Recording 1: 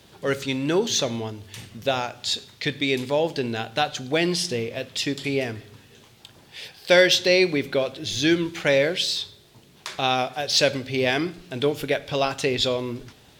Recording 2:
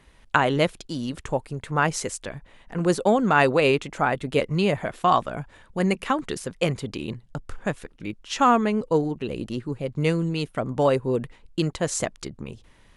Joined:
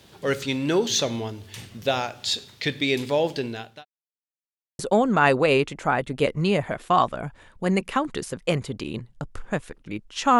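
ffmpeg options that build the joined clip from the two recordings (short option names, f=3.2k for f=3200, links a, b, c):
-filter_complex "[0:a]apad=whole_dur=10.39,atrim=end=10.39,asplit=2[a][b];[a]atrim=end=3.85,asetpts=PTS-STARTPTS,afade=t=out:st=3.3:d=0.55[c];[b]atrim=start=3.85:end=4.79,asetpts=PTS-STARTPTS,volume=0[d];[1:a]atrim=start=2.93:end=8.53,asetpts=PTS-STARTPTS,afade=t=in:d=0.004:c=hsin[e];[c][d][e]concat=n=3:v=0:a=1"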